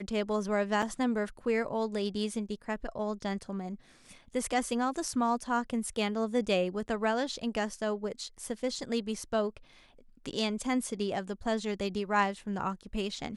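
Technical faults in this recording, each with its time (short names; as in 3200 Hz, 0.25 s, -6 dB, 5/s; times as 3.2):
0.82–0.83 gap 5.1 ms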